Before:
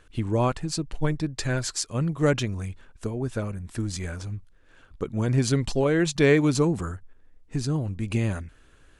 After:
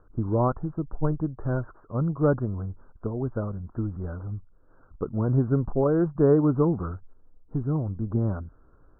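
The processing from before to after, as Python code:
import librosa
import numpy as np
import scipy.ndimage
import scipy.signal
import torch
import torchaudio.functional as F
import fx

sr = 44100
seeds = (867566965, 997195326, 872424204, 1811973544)

y = scipy.signal.sosfilt(scipy.signal.butter(12, 1400.0, 'lowpass', fs=sr, output='sos'), x)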